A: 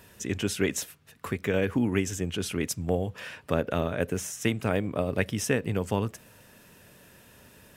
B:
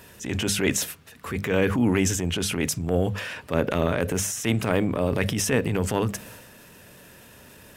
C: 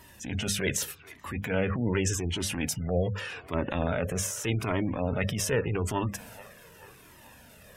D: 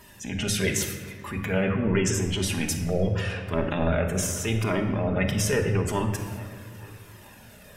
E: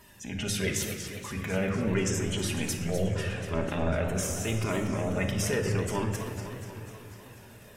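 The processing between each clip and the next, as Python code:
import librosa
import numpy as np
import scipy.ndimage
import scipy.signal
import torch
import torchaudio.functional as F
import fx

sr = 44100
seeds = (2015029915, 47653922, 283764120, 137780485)

y1 = fx.hum_notches(x, sr, base_hz=50, count=4)
y1 = fx.transient(y1, sr, attack_db=-8, sustain_db=6)
y1 = F.gain(torch.from_numpy(y1), 5.5).numpy()
y2 = fx.echo_wet_bandpass(y1, sr, ms=434, feedback_pct=62, hz=1200.0, wet_db=-16.5)
y2 = fx.spec_gate(y2, sr, threshold_db=-30, keep='strong')
y2 = fx.comb_cascade(y2, sr, direction='falling', hz=0.84)
y3 = fx.room_shoebox(y2, sr, seeds[0], volume_m3=1800.0, walls='mixed', distance_m=1.3)
y3 = F.gain(torch.from_numpy(y3), 1.5).numpy()
y4 = fx.echo_warbled(y3, sr, ms=246, feedback_pct=67, rate_hz=2.8, cents=203, wet_db=-10)
y4 = F.gain(torch.from_numpy(y4), -4.5).numpy()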